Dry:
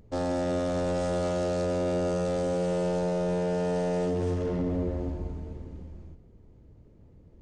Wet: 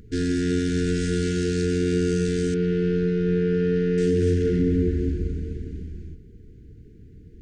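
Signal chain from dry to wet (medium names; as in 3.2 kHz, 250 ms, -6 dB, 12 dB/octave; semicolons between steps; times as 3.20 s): 2.54–3.98 s: distance through air 280 m; FFT band-reject 480–1400 Hz; trim +8 dB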